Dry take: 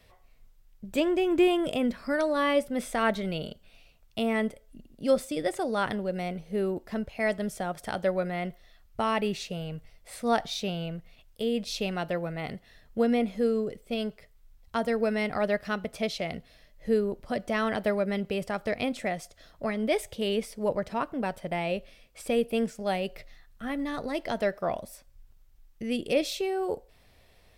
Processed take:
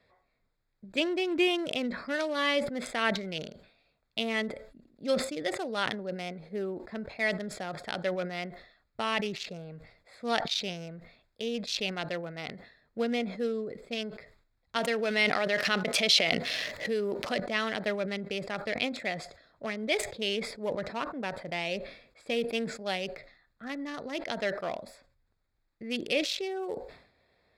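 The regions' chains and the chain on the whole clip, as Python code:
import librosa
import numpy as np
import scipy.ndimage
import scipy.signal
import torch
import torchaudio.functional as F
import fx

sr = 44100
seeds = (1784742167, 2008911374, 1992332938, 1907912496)

y = fx.chain(x, sr, fx.highpass(hz=260.0, slope=6),
    fx.env_flatten(amount_pct=70), at=(14.76, 17.4))
y = fx.wiener(y, sr, points=15)
y = fx.weighting(y, sr, curve='D')
y = fx.sustainer(y, sr, db_per_s=92.0)
y = F.gain(torch.from_numpy(y), -4.5).numpy()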